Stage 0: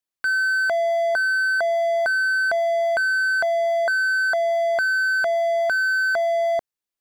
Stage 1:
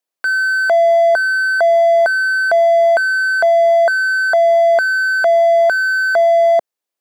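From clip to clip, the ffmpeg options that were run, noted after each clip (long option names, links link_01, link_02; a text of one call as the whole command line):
ffmpeg -i in.wav -af "highpass=210,equalizer=frequency=590:width_type=o:width=1.3:gain=6.5,volume=4dB" out.wav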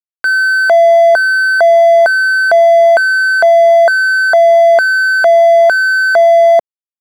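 ffmpeg -i in.wav -af "areverse,acompressor=mode=upward:threshold=-36dB:ratio=2.5,areverse,aeval=exprs='sgn(val(0))*max(abs(val(0))-0.00668,0)':channel_layout=same,volume=5dB" out.wav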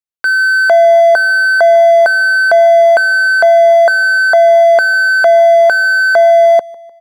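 ffmpeg -i in.wav -af "aecho=1:1:151|302|453:0.0708|0.0347|0.017" out.wav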